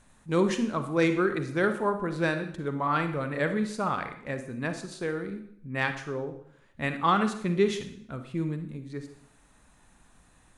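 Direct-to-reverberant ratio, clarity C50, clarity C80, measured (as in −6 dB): 8.0 dB, 9.5 dB, 12.5 dB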